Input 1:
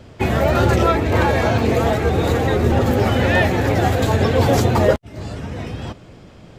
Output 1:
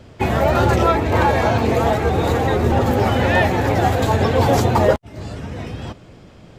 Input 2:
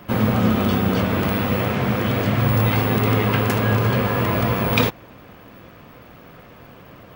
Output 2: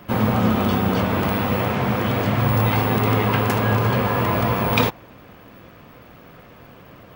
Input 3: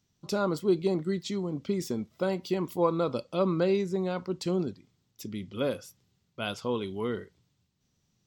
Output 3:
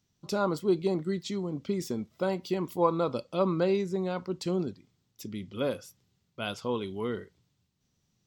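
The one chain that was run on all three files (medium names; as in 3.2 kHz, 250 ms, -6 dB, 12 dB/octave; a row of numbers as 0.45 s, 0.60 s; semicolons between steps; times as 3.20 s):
dynamic bell 890 Hz, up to +5 dB, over -35 dBFS, Q 1.9; trim -1 dB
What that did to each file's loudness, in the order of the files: 0.0 LU, -0.5 LU, -0.5 LU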